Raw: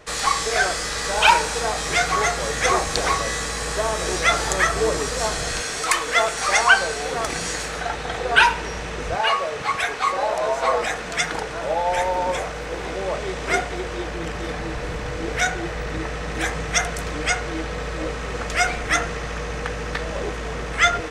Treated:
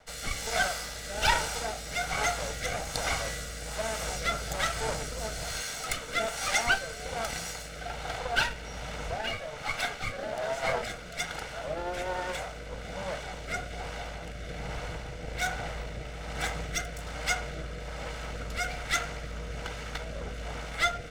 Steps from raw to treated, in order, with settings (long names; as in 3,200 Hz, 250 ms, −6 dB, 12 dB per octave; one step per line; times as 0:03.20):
lower of the sound and its delayed copy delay 1.4 ms
rotating-speaker cabinet horn 1.2 Hz
level −6 dB